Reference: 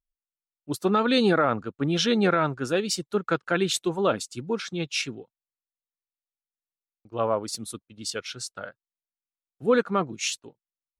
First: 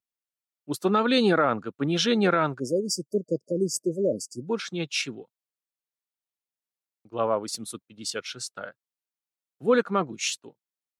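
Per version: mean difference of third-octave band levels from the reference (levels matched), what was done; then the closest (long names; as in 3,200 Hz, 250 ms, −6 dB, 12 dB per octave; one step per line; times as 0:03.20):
2.5 dB: high-pass filter 130 Hz
time-frequency box erased 0:02.60–0:04.47, 630–4,600 Hz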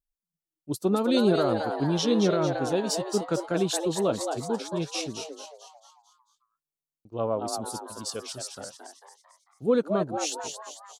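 7.5 dB: parametric band 1,800 Hz −13.5 dB 1.6 octaves
on a send: echo with shifted repeats 223 ms, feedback 48%, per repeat +150 Hz, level −6.5 dB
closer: first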